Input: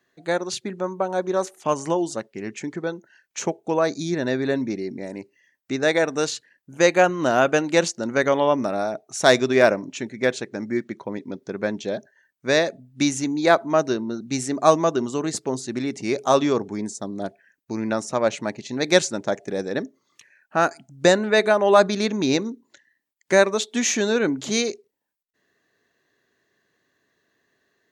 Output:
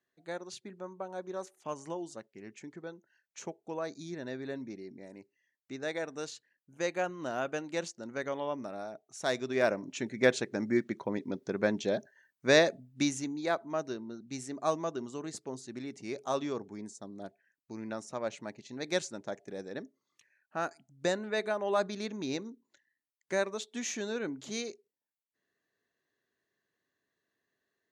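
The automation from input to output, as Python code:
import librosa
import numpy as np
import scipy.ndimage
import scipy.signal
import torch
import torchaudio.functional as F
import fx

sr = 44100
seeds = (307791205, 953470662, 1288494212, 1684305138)

y = fx.gain(x, sr, db=fx.line((9.36, -16.0), (10.16, -3.5), (12.68, -3.5), (13.48, -14.5)))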